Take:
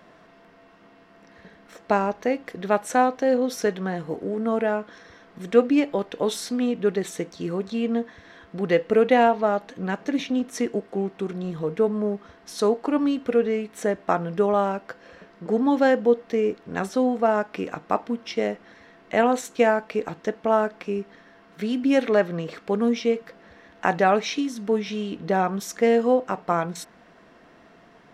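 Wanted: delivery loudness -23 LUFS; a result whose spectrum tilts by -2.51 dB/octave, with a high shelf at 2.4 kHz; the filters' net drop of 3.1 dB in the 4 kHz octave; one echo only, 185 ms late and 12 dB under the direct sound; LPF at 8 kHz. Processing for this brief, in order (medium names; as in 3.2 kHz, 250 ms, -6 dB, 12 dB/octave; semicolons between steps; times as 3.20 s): low-pass 8 kHz; treble shelf 2.4 kHz +5 dB; peaking EQ 4 kHz -9 dB; delay 185 ms -12 dB; trim +0.5 dB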